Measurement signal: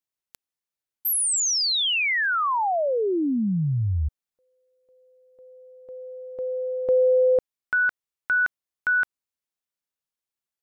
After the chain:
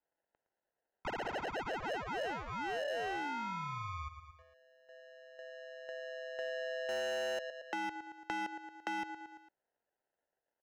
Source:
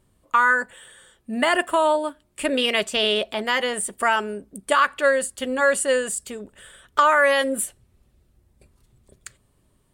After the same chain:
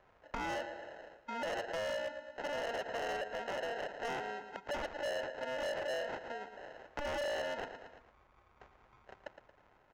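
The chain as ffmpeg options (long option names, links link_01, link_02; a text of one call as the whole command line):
ffmpeg -i in.wav -filter_complex "[0:a]asoftclip=type=tanh:threshold=-9dB,lowshelf=frequency=190:gain=3,acrusher=samples=38:mix=1:aa=0.000001,acrossover=split=500 2400:gain=0.0891 1 0.141[link_01][link_02][link_03];[link_01][link_02][link_03]amix=inputs=3:normalize=0,aresample=16000,aresample=44100,asplit=2[link_04][link_05];[link_05]aecho=0:1:113|226|339|452:0.211|0.0782|0.0289|0.0107[link_06];[link_04][link_06]amix=inputs=2:normalize=0,asoftclip=type=hard:threshold=-27dB,acompressor=threshold=-56dB:ratio=2:attack=14:release=257:detection=peak,volume=7dB" out.wav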